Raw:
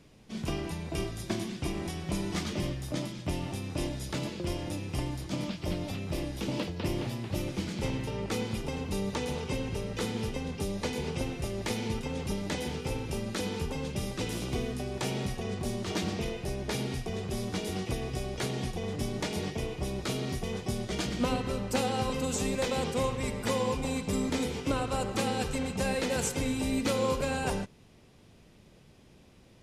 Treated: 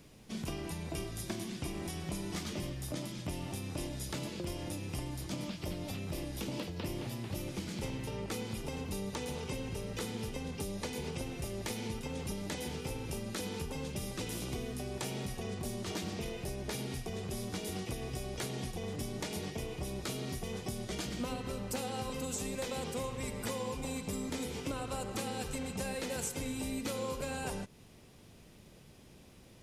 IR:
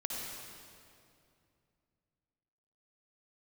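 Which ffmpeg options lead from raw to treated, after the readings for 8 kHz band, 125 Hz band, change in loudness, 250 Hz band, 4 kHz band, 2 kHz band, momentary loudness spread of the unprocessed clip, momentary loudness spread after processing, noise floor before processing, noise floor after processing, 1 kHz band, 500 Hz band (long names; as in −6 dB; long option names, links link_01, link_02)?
−2.5 dB, −6.0 dB, −6.0 dB, −6.5 dB, −5.0 dB, −6.0 dB, 5 LU, 3 LU, −57 dBFS, −57 dBFS, −7.0 dB, −7.0 dB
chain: -af "highshelf=frequency=9600:gain=12,acompressor=threshold=-37dB:ratio=3"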